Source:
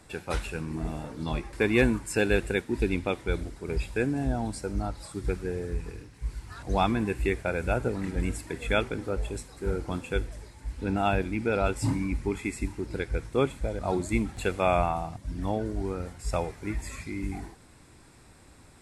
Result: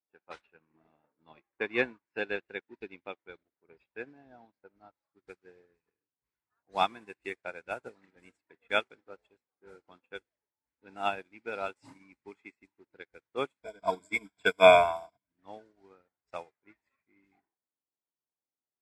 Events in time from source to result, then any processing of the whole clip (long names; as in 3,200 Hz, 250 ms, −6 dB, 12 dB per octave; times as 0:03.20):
0:00.41–0:04.97: high-frequency loss of the air 190 metres
0:13.63–0:15.27: EQ curve with evenly spaced ripples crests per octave 1.7, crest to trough 17 dB
whole clip: low-pass that shuts in the quiet parts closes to 850 Hz, open at −22 dBFS; meter weighting curve A; expander for the loud parts 2.5 to 1, over −50 dBFS; level +6.5 dB